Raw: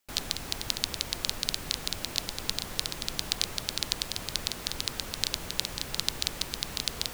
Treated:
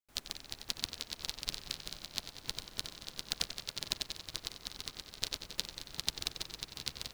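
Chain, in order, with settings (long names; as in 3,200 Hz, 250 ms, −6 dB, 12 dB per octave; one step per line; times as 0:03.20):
bucket-brigade delay 92 ms, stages 4,096, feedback 81%, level −5.5 dB
expander for the loud parts 2.5 to 1, over −37 dBFS
level −4 dB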